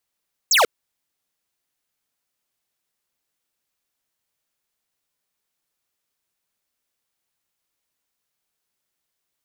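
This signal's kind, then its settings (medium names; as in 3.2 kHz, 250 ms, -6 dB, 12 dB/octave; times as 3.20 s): laser zap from 8 kHz, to 400 Hz, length 0.14 s square, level -15 dB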